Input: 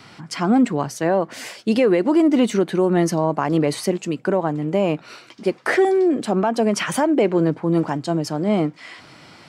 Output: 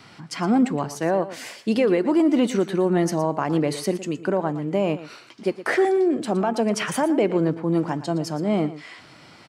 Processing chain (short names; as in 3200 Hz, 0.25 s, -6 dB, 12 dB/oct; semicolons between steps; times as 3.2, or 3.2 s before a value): de-hum 432.6 Hz, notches 28; on a send: echo 0.116 s -14.5 dB; on the sum: gain -3 dB